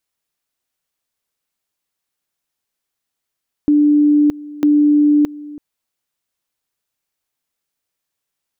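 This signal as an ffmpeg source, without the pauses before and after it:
-f lavfi -i "aevalsrc='pow(10,(-8.5-20*gte(mod(t,0.95),0.62))/20)*sin(2*PI*295*t)':d=1.9:s=44100"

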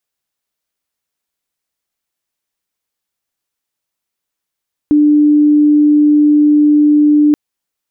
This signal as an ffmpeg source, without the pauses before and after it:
-f lavfi -i "aevalsrc='0.531*sin(2*PI*297*t)':d=2.43:s=44100"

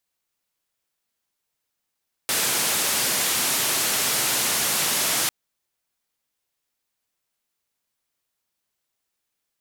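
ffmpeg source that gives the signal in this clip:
-f lavfi -i "anoisesrc=c=white:d=3:r=44100:seed=1,highpass=f=120,lowpass=f=13000,volume=-15.8dB"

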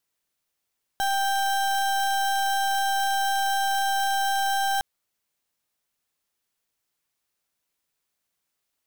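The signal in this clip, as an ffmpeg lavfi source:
-f lavfi -i "aevalsrc='0.0631*(2*lt(mod(787*t,1),0.34)-1)':d=3.81:s=44100"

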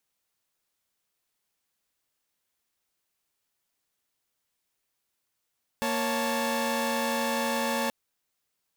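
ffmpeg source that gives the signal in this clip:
-f lavfi -i "aevalsrc='0.0398*((2*mod(233.08*t,1)-1)+(2*mod(554.37*t,1)-1)+(2*mod(880*t,1)-1))':d=2.08:s=44100"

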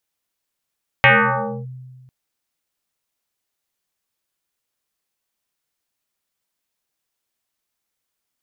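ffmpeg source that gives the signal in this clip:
-f lavfi -i "aevalsrc='0.473*pow(10,-3*t/1.64)*sin(2*PI*128*t+7.4*clip(1-t/0.62,0,1)*sin(2*PI*2.66*128*t))':d=1.05:s=44100"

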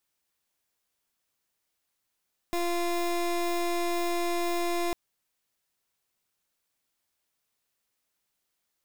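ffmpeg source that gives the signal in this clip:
-f lavfi -i "aevalsrc='0.0398*(2*lt(mod(346*t,1),0.23)-1)':d=2.4:s=44100"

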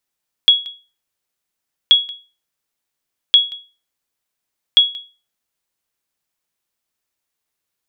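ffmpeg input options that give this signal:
-f lavfi -i "aevalsrc='0.794*(sin(2*PI*3340*mod(t,1.43))*exp(-6.91*mod(t,1.43)/0.32)+0.0794*sin(2*PI*3340*max(mod(t,1.43)-0.18,0))*exp(-6.91*max(mod(t,1.43)-0.18,0)/0.32))':d=5.72:s=44100"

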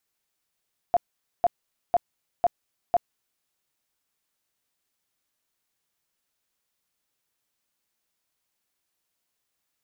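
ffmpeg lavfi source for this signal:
-f lavfi -i "aevalsrc='0.168*sin(2*PI*700*mod(t,0.5))*lt(mod(t,0.5),19/700)':d=2.5:s=44100"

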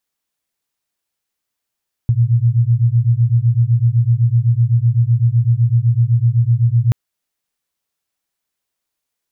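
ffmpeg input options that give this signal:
-f lavfi -i "aevalsrc='0.211*(sin(2*PI*114*t)+sin(2*PI*121.9*t))':d=4.83:s=44100"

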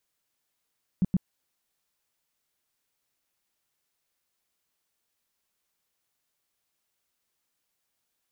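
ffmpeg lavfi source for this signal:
-f lavfi -i "aevalsrc='0.119*sin(2*PI*185*mod(t,0.12))*lt(mod(t,0.12),5/185)':d=0.24:s=44100"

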